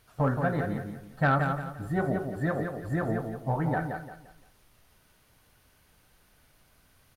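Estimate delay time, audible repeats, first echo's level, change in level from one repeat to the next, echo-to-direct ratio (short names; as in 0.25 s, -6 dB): 0.173 s, 3, -6.0 dB, -10.0 dB, -5.5 dB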